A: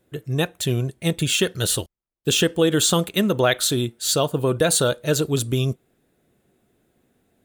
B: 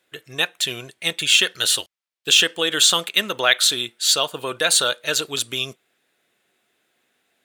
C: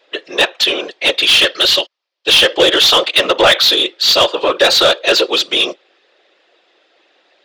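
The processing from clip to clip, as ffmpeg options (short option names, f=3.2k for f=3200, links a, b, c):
-af "highpass=f=820:p=1,equalizer=f=2.8k:t=o:w=2.9:g=11,volume=-2.5dB"
-filter_complex "[0:a]afftfilt=real='hypot(re,im)*cos(2*PI*random(0))':imag='hypot(re,im)*sin(2*PI*random(1))':win_size=512:overlap=0.75,highpass=f=220:w=0.5412,highpass=f=220:w=1.3066,equalizer=f=230:t=q:w=4:g=-8,equalizer=f=350:t=q:w=4:g=6,equalizer=f=550:t=q:w=4:g=7,equalizer=f=1.5k:t=q:w=4:g=-6,equalizer=f=2.2k:t=q:w=4:g=-5,equalizer=f=4.9k:t=q:w=4:g=4,lowpass=f=5.3k:w=0.5412,lowpass=f=5.3k:w=1.3066,asplit=2[a][b];[b]highpass=f=720:p=1,volume=21dB,asoftclip=type=tanh:threshold=-8dB[c];[a][c]amix=inputs=2:normalize=0,lowpass=f=3.5k:p=1,volume=-6dB,volume=8dB"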